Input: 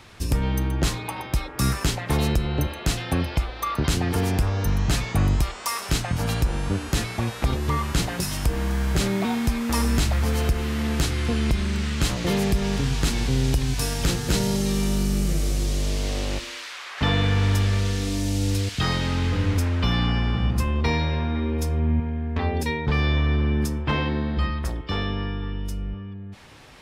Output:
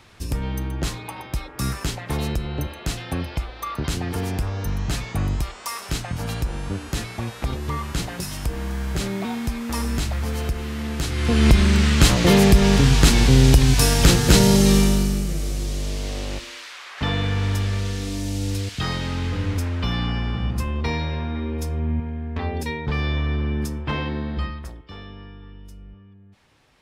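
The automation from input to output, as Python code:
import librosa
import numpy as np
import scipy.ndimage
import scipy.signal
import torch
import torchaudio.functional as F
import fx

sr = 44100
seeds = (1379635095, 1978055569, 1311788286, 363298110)

y = fx.gain(x, sr, db=fx.line((11.01, -3.0), (11.47, 8.5), (14.75, 8.5), (15.27, -2.0), (24.39, -2.0), (24.86, -12.5)))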